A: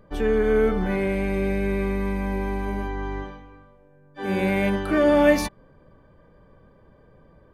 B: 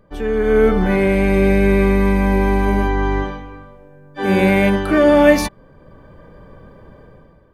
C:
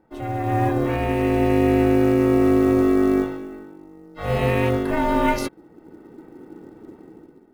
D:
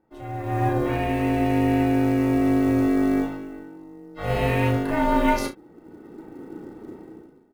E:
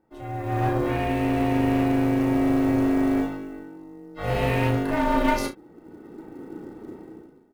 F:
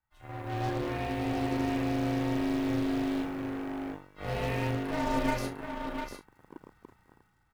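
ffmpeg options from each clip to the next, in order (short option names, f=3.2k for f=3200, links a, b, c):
-af "dynaudnorm=f=110:g=9:m=12dB"
-af "asubboost=boost=4:cutoff=150,acrusher=bits=8:mode=log:mix=0:aa=0.000001,aeval=exprs='val(0)*sin(2*PI*320*n/s)':c=same,volume=-5dB"
-filter_complex "[0:a]dynaudnorm=f=230:g=5:m=10dB,asplit=2[a][b];[b]aecho=0:1:34|66:0.473|0.141[c];[a][c]amix=inputs=2:normalize=0,volume=-8dB"
-af "aeval=exprs='clip(val(0),-1,0.1)':c=same"
-filter_complex "[0:a]aecho=1:1:700:0.447,acrossover=split=120|1000|1800[a][b][c][d];[b]acrusher=bits=4:mix=0:aa=0.5[e];[a][e][c][d]amix=inputs=4:normalize=0,volume=-8.5dB"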